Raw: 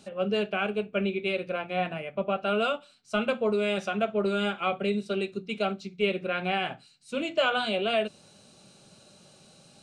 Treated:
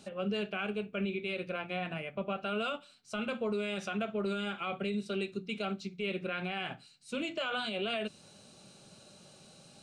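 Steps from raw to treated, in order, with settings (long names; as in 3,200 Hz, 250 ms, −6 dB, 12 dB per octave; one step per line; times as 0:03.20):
dynamic equaliser 610 Hz, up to −5 dB, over −41 dBFS, Q 0.99
brickwall limiter −25 dBFS, peak gain reduction 9 dB
level −1 dB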